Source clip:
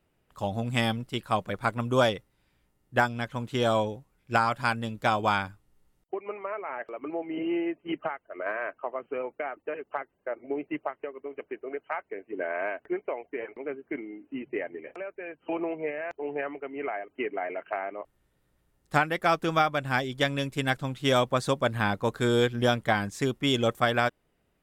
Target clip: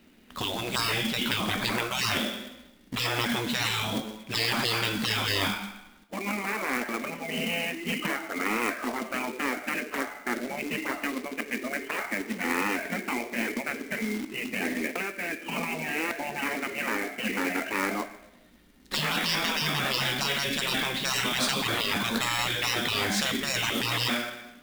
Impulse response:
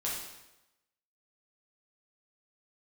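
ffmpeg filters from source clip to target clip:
-filter_complex "[0:a]equalizer=f=125:t=o:w=1:g=-10,equalizer=f=250:t=o:w=1:g=9,equalizer=f=2k:t=o:w=1:g=7,equalizer=f=4k:t=o:w=1:g=10,equalizer=f=8k:t=o:w=1:g=-5,asplit=2[a][b];[1:a]atrim=start_sample=2205,highshelf=f=2.3k:g=11.5[c];[b][c]afir=irnorm=-1:irlink=0,volume=-17.5dB[d];[a][d]amix=inputs=2:normalize=0,afftfilt=real='re*lt(hypot(re,im),0.0891)':imag='im*lt(hypot(re,im),0.0891)':win_size=1024:overlap=0.75,equalizer=f=220:t=o:w=0.72:g=11.5,acrusher=bits=2:mode=log:mix=0:aa=0.000001,volume=6.5dB"

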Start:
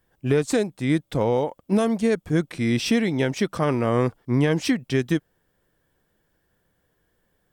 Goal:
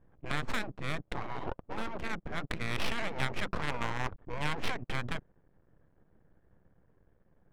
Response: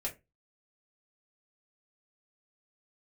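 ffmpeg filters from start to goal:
-filter_complex "[0:a]asplit=3[a][b][c];[a]afade=t=out:st=3.33:d=0.02[d];[b]asubboost=boost=2.5:cutoff=210,afade=t=in:st=3.33:d=0.02,afade=t=out:st=4.34:d=0.02[e];[c]afade=t=in:st=4.34:d=0.02[f];[d][e][f]amix=inputs=3:normalize=0,afftfilt=real='re*lt(hypot(re,im),0.112)':imag='im*lt(hypot(re,im),0.112)':win_size=1024:overlap=0.75,aeval=exprs='max(val(0),0)':c=same,bass=f=250:g=4,treble=f=4k:g=-6,adynamicsmooth=sensitivity=6.5:basefreq=1.2k,volume=7dB"

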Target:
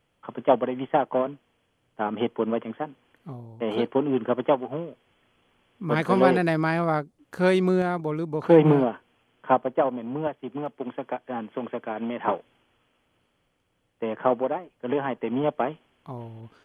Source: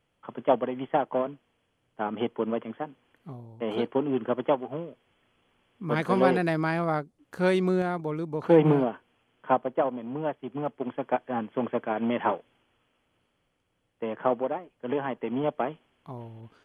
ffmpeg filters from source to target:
-filter_complex "[0:a]asettb=1/sr,asplit=3[a][b][c];[a]atrim=end=10.274[d];[b]atrim=start=10.27:end=12.28,asetpts=PTS-STARTPTS,afade=t=in:d=0.004:c=qsin,afade=t=out:st=2.006:d=0.004:c=qsin,acrossover=split=140|3000[e][f][g];[e]acompressor=threshold=-58dB:ratio=4[h];[f]acompressor=threshold=-31dB:ratio=4[i];[g]acompressor=threshold=-57dB:ratio=4[j];[h][i][j]amix=inputs=3:normalize=0[k];[c]atrim=start=12.276[l];[d][k]acrossfade=d=0.004:c1=hsin:c2=qsin[m];[m][l]acrossfade=d=0.004:c1=qsin:c2=hsin,volume=3dB"

